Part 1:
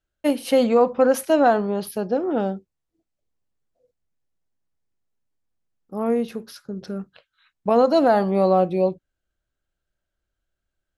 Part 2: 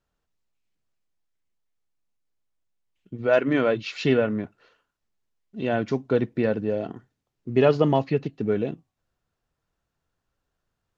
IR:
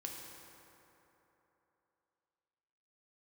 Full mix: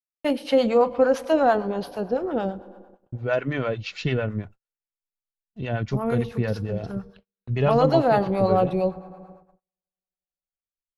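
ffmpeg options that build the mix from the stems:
-filter_complex "[0:a]acrossover=split=5300[link_01][link_02];[link_02]acompressor=threshold=-53dB:ratio=4:attack=1:release=60[link_03];[link_01][link_03]amix=inputs=2:normalize=0,volume=1dB,asplit=2[link_04][link_05];[link_05]volume=-10.5dB[link_06];[1:a]volume=0.5dB[link_07];[2:a]atrim=start_sample=2205[link_08];[link_06][link_08]afir=irnorm=-1:irlink=0[link_09];[link_04][link_07][link_09]amix=inputs=3:normalize=0,agate=range=-43dB:threshold=-41dB:ratio=16:detection=peak,asubboost=boost=10.5:cutoff=87,acrossover=split=610[link_10][link_11];[link_10]aeval=exprs='val(0)*(1-0.7/2+0.7/2*cos(2*PI*8.9*n/s))':channel_layout=same[link_12];[link_11]aeval=exprs='val(0)*(1-0.7/2-0.7/2*cos(2*PI*8.9*n/s))':channel_layout=same[link_13];[link_12][link_13]amix=inputs=2:normalize=0"

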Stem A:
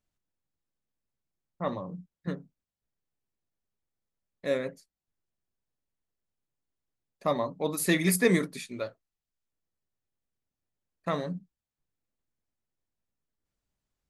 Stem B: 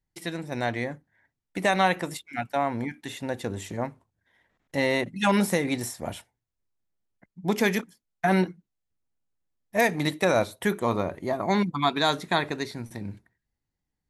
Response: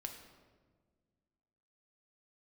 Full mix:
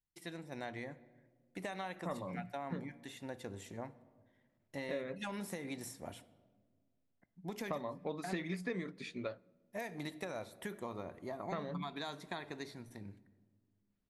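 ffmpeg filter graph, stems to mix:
-filter_complex "[0:a]lowpass=3900,adelay=450,volume=-3dB,asplit=2[link_01][link_02];[link_02]volume=-21.5dB[link_03];[1:a]bandreject=frequency=60:width_type=h:width=6,bandreject=frequency=120:width_type=h:width=6,acompressor=threshold=-24dB:ratio=6,volume=-15.5dB,asplit=2[link_04][link_05];[link_05]volume=-5.5dB[link_06];[2:a]atrim=start_sample=2205[link_07];[link_03][link_06]amix=inputs=2:normalize=0[link_08];[link_08][link_07]afir=irnorm=-1:irlink=0[link_09];[link_01][link_04][link_09]amix=inputs=3:normalize=0,acompressor=threshold=-36dB:ratio=8"

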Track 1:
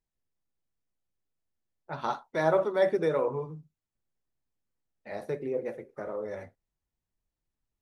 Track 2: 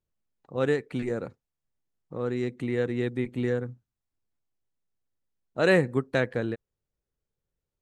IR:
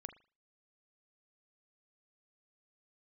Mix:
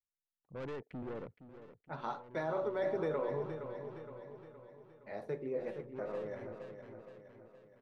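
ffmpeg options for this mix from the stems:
-filter_complex "[0:a]bandreject=frequency=96.24:width_type=h:width=4,bandreject=frequency=192.48:width_type=h:width=4,bandreject=frequency=288.72:width_type=h:width=4,bandreject=frequency=384.96:width_type=h:width=4,bandreject=frequency=481.2:width_type=h:width=4,bandreject=frequency=577.44:width_type=h:width=4,bandreject=frequency=673.68:width_type=h:width=4,bandreject=frequency=769.92:width_type=h:width=4,bandreject=frequency=866.16:width_type=h:width=4,bandreject=frequency=962.4:width_type=h:width=4,bandreject=frequency=1058.64:width_type=h:width=4,agate=range=-33dB:threshold=-48dB:ratio=3:detection=peak,alimiter=limit=-21dB:level=0:latency=1:release=59,volume=-5.5dB,asplit=3[link_01][link_02][link_03];[link_02]volume=-9dB[link_04];[1:a]afwtdn=0.0141,alimiter=limit=-17.5dB:level=0:latency=1:release=68,aeval=exprs='(tanh(50.1*val(0)+0.4)-tanh(0.4))/50.1':channel_layout=same,volume=-5.5dB,asplit=2[link_05][link_06];[link_06]volume=-12.5dB[link_07];[link_03]apad=whole_len=344787[link_08];[link_05][link_08]sidechaincompress=threshold=-47dB:ratio=12:attack=7.6:release=766[link_09];[link_04][link_07]amix=inputs=2:normalize=0,aecho=0:1:467|934|1401|1868|2335|2802|3269:1|0.51|0.26|0.133|0.0677|0.0345|0.0176[link_10];[link_01][link_09][link_10]amix=inputs=3:normalize=0,aemphasis=mode=reproduction:type=50kf"

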